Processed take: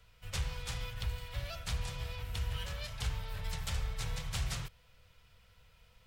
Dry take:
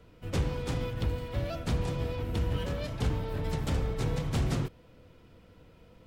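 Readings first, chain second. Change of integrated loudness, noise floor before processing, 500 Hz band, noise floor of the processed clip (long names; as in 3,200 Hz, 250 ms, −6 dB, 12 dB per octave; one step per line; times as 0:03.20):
−7.0 dB, −57 dBFS, −15.0 dB, −64 dBFS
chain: guitar amp tone stack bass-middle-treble 10-0-10
level +3 dB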